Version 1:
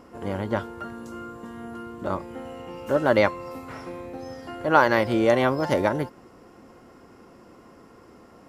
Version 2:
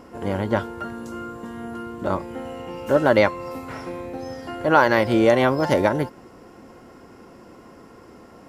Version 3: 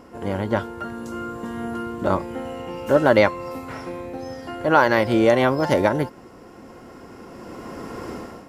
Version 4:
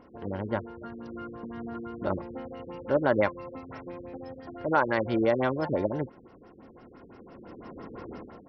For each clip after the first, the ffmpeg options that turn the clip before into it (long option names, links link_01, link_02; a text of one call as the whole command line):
ffmpeg -i in.wav -filter_complex "[0:a]asplit=2[link_01][link_02];[link_02]alimiter=limit=-9.5dB:level=0:latency=1:release=209,volume=1.5dB[link_03];[link_01][link_03]amix=inputs=2:normalize=0,bandreject=frequency=1200:width=17,volume=-2.5dB" out.wav
ffmpeg -i in.wav -af "dynaudnorm=framelen=810:gausssize=3:maxgain=16.5dB,volume=-1dB" out.wav
ffmpeg -i in.wav -af "afftfilt=real='re*lt(b*sr/1024,460*pow(6100/460,0.5+0.5*sin(2*PI*5.9*pts/sr)))':imag='im*lt(b*sr/1024,460*pow(6100/460,0.5+0.5*sin(2*PI*5.9*pts/sr)))':win_size=1024:overlap=0.75,volume=-8dB" out.wav